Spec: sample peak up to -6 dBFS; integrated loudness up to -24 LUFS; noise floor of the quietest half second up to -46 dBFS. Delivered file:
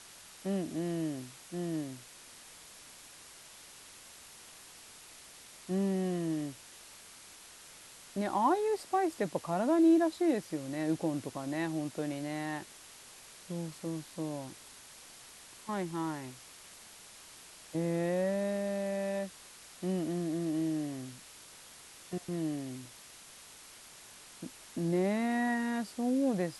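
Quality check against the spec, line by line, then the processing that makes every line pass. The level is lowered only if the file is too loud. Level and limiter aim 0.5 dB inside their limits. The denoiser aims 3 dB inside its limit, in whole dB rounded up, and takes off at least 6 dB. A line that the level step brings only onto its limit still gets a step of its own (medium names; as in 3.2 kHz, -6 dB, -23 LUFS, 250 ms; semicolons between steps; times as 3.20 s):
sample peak -17.5 dBFS: pass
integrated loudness -33.5 LUFS: pass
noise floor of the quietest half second -53 dBFS: pass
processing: none needed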